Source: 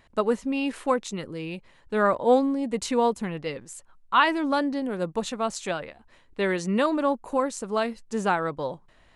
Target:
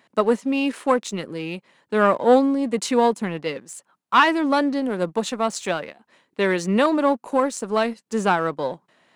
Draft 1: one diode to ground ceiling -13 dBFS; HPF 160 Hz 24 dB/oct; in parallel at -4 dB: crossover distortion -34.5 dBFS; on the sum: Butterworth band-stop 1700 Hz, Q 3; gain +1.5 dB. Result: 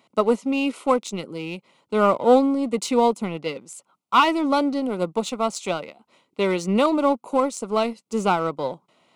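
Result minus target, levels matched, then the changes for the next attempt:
crossover distortion: distortion +9 dB; 2000 Hz band -4.5 dB
change: crossover distortion -44 dBFS; remove: Butterworth band-stop 1700 Hz, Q 3

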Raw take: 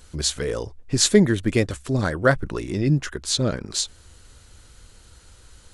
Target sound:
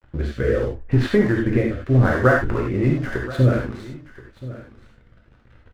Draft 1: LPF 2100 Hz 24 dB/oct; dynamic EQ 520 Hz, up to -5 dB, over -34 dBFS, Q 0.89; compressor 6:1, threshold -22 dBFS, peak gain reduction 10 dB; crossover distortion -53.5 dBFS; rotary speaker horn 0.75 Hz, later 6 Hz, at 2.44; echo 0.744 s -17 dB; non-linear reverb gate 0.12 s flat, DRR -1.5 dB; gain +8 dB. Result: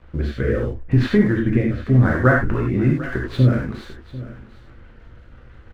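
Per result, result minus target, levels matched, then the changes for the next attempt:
echo 0.284 s early; crossover distortion: distortion -8 dB; 500 Hz band -3.0 dB
change: echo 1.028 s -17 dB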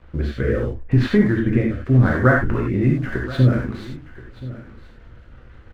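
crossover distortion: distortion -8 dB; 500 Hz band -3.0 dB
change: crossover distortion -45 dBFS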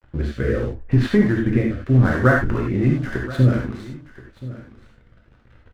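500 Hz band -3.0 dB
change: dynamic EQ 210 Hz, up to -5 dB, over -34 dBFS, Q 0.89

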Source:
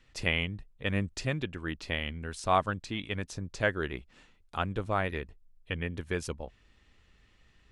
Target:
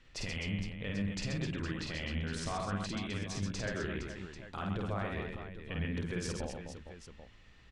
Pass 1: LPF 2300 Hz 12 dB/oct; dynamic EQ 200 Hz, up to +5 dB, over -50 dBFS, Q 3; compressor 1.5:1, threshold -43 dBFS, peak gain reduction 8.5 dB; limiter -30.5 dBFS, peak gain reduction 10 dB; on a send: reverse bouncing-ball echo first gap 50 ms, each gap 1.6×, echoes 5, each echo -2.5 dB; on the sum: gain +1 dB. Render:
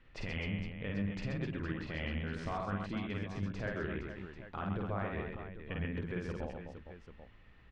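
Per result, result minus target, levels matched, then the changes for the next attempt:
8000 Hz band -17.5 dB; compressor: peak gain reduction +8.5 dB
change: LPF 7200 Hz 12 dB/oct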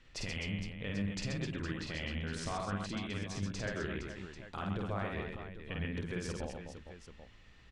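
compressor: peak gain reduction +8.5 dB
remove: compressor 1.5:1, threshold -43 dBFS, peak gain reduction 8.5 dB

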